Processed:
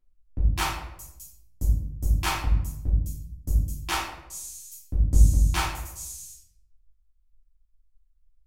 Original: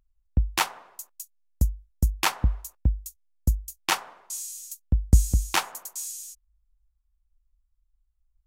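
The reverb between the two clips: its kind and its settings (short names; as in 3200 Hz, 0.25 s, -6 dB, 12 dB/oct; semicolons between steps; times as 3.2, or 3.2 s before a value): shoebox room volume 170 m³, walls mixed, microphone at 3 m; gain -12 dB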